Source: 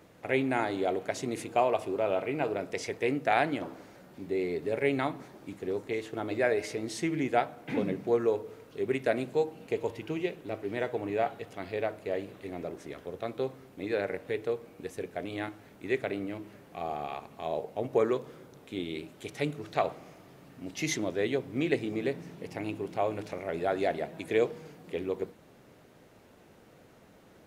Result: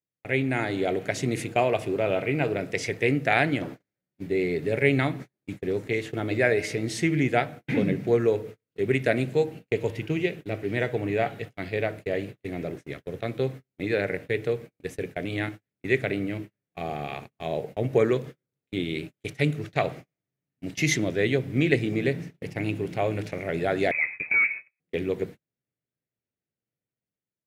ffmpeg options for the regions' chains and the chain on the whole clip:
-filter_complex "[0:a]asettb=1/sr,asplit=3[s0][s1][s2];[s0]atrim=end=23.914[s3];[s1]atrim=start=23.91:end=24.8,asetpts=PTS-STARTPTS,afade=t=in:d=0.004:c=qsin,afade=t=out:st=0.886:d=0.004:c=qsin,volume=23.7,asoftclip=hard,volume=0.0422,lowpass=f=2300:t=q:w=0.5098,lowpass=f=2300:t=q:w=0.6013,lowpass=f=2300:t=q:w=0.9,lowpass=f=2300:t=q:w=2.563,afreqshift=-2700[s4];[s2]atrim=start=24.796[s5];[s3][s4]acrossfade=d=0.004:c1=hsin:c2=qsin[s6];[s6][s5]acrossfade=d=0.004:c1=qsin:c2=hsin,agate=range=0.00708:threshold=0.00794:ratio=16:detection=peak,dynaudnorm=f=260:g=5:m=1.78,equalizer=f=125:t=o:w=1:g=9,equalizer=f=1000:t=o:w=1:g=-8,equalizer=f=2000:t=o:w=1:g=6"

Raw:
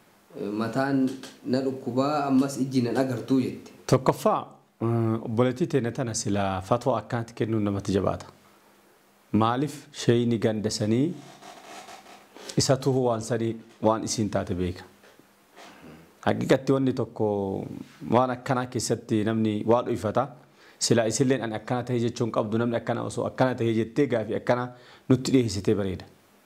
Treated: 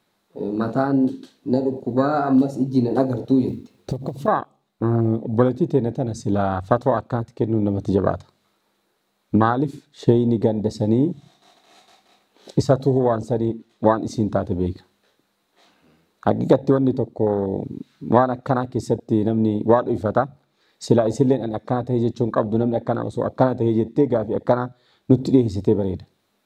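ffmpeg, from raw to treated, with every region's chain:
-filter_complex "[0:a]asettb=1/sr,asplit=3[s0][s1][s2];[s0]atrim=end=3.484[s3];[s1]atrim=start=3.48:end=4.28,asetpts=PTS-STARTPTS,afade=t=in:d=0.004:c=qsin,afade=t=out:st=0.796:d=0.004:c=qsin,equalizer=f=71:t=o:w=2.9:g=7.5,acompressor=threshold=0.0562:ratio=12:attack=3.2:release=140:knee=1:detection=peak,acrusher=bits=5:mode=log:mix=0:aa=0.000001[s4];[s2]atrim=start=4.276[s5];[s3][s4]acrossfade=d=0.004:c1=hsin:c2=qsin[s6];[s6][s5]acrossfade=d=0.004:c1=qsin:c2=hsin,afwtdn=0.0398,equalizer=f=3900:w=4.4:g=10,volume=1.88"

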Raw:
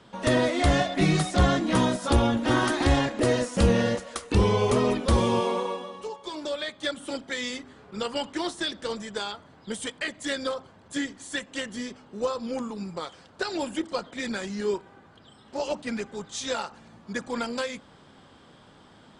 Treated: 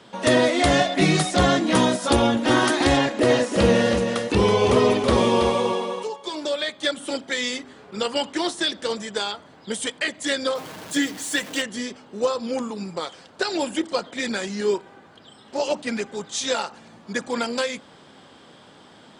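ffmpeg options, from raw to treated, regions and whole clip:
-filter_complex "[0:a]asettb=1/sr,asplit=3[s0][s1][s2];[s0]atrim=end=2.974[s3];[s1]atrim=start=2.97:end=6.03,asetpts=PTS-STARTPTS,afade=t=in:d=0.004:c=qsin,afade=t=out:st=3.056:d=0.004:c=qsin,acrossover=split=4300[s4][s5];[s5]acompressor=threshold=0.00708:ratio=4:attack=1:release=60[s6];[s4][s6]amix=inputs=2:normalize=0,aecho=1:1:326:0.447,atrim=end_sample=134946[s7];[s2]atrim=start=6.026[s8];[s3][s7]acrossfade=d=0.004:c1=hsin:c2=qsin[s9];[s9][s8]acrossfade=d=0.004:c1=qsin:c2=hsin,asettb=1/sr,asplit=3[s10][s11][s12];[s10]atrim=end=10.554[s13];[s11]atrim=start=10.55:end=11.62,asetpts=PTS-STARTPTS,afade=t=in:d=0.004:c=qsin,afade=t=out:st=1.066:d=0.004:c=qsin,aeval=exprs='val(0)+0.5*0.0106*sgn(val(0))':c=same,aecho=1:1:6.5:0.4,atrim=end_sample=47187[s14];[s12]atrim=start=11.616[s15];[s13][s14]acrossfade=d=0.004:c1=hsin:c2=qsin[s16];[s16][s15]acrossfade=d=0.004:c1=qsin:c2=hsin,highpass=f=260:p=1,equalizer=f=1200:w=1.3:g=-3,volume=2.24"

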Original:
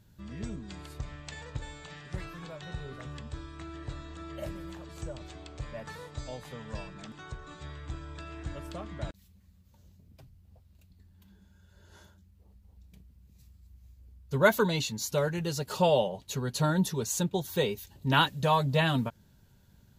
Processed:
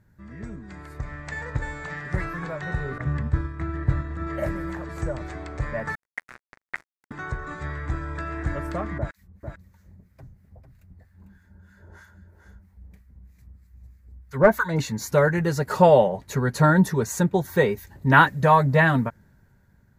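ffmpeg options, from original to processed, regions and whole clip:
-filter_complex "[0:a]asettb=1/sr,asplit=3[s0][s1][s2];[s0]atrim=end=2.984[s3];[s1]atrim=start=2.98:end=4.27,asetpts=PTS-STARTPTS,afade=t=in:d=0.004:c=qsin,afade=t=out:st=1.286:d=0.004:c=qsin,agate=range=0.0224:threshold=0.01:ratio=3:release=100:detection=peak,highpass=54,bass=f=250:g=9,treble=f=4000:g=-5[s4];[s2]atrim=start=4.266[s5];[s3][s4]acrossfade=d=0.004:c1=hsin:c2=qsin[s6];[s6][s5]acrossfade=d=0.004:c1=qsin:c2=hsin,asettb=1/sr,asplit=3[s7][s8][s9];[s7]atrim=end=5.954[s10];[s8]atrim=start=5.95:end=7.11,asetpts=PTS-STARTPTS,afade=t=in:d=0.004:c=qsin,afade=t=out:st=1.156:d=0.004:c=qsin,lowshelf=f=84:g=-6.5,acrusher=bits=4:mix=0:aa=0.5,aeval=exprs='val(0)*sin(2*PI*2000*n/s)':c=same[s11];[s9]atrim=start=7.106[s12];[s10][s11]acrossfade=d=0.004:c1=hsin:c2=qsin[s13];[s13][s12]acrossfade=d=0.004:c1=qsin:c2=hsin,asettb=1/sr,asplit=3[s14][s15][s16];[s14]atrim=end=8.984[s17];[s15]atrim=start=8.98:end=14.79,asetpts=PTS-STARTPTS,afade=t=in:d=0.004:c=qsin,afade=t=out:st=5.806:d=0.004:c=qsin,acrossover=split=1100[s18][s19];[s18]aeval=exprs='val(0)*(1-1/2+1/2*cos(2*PI*3.1*n/s))':c=same[s20];[s19]aeval=exprs='val(0)*(1-1/2-1/2*cos(2*PI*3.1*n/s))':c=same[s21];[s20][s21]amix=inputs=2:normalize=0,aeval=exprs='clip(val(0),-1,0.0944)':c=same,aecho=1:1:449:0.422,atrim=end_sample=256221[s22];[s16]atrim=start=14.786[s23];[s17][s22]acrossfade=d=0.004:c1=hsin:c2=qsin[s24];[s24][s23]acrossfade=d=0.004:c1=qsin:c2=hsin,highshelf=f=2400:t=q:w=3:g=-7.5,dynaudnorm=f=210:g=11:m=3.35"

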